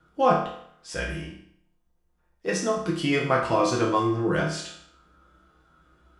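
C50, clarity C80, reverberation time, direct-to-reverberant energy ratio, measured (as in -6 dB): 5.0 dB, 8.0 dB, 0.65 s, -4.0 dB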